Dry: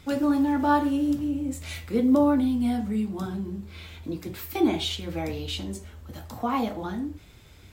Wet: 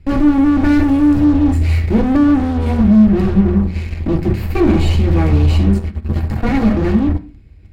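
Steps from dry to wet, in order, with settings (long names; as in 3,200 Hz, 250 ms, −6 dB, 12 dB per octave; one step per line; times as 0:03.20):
lower of the sound and its delayed copy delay 0.42 ms
notch filter 6,500 Hz, Q 6.1
0:00.64–0:01.25: high-shelf EQ 4,600 Hz +9 dB
mains-hum notches 60/120/180/240 Hz
in parallel at −4 dB: fuzz pedal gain 40 dB, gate −42 dBFS
on the sum: RIAA equalisation playback
on a send at −4 dB: convolution reverb RT60 0.40 s, pre-delay 3 ms
on the sum: level −4 dB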